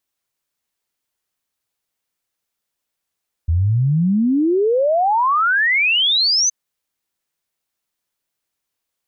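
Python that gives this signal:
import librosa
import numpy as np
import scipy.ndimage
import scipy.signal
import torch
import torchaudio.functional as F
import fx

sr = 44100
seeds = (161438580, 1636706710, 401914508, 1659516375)

y = fx.ess(sr, length_s=3.02, from_hz=78.0, to_hz=6300.0, level_db=-13.0)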